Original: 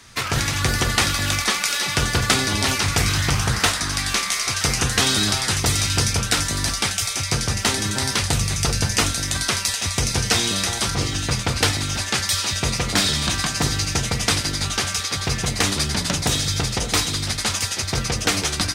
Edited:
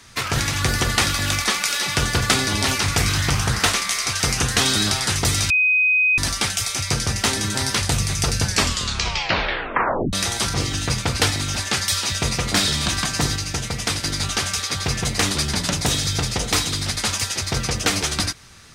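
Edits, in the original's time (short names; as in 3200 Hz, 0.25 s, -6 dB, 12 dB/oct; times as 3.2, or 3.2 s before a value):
3.74–4.15 cut
5.91–6.59 bleep 2510 Hz -14 dBFS
8.84 tape stop 1.70 s
13.77–14.45 gain -3.5 dB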